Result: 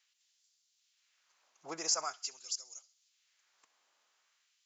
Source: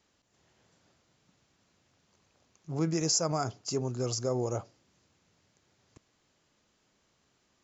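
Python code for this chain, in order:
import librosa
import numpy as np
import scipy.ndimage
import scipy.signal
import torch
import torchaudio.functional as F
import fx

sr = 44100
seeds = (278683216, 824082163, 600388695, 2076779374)

y = fx.echo_thinned(x, sr, ms=109, feedback_pct=46, hz=600.0, wet_db=-20.5)
y = fx.stretch_vocoder(y, sr, factor=0.61)
y = fx.filter_lfo_highpass(y, sr, shape='sine', hz=0.45, low_hz=790.0, high_hz=4900.0, q=1.1)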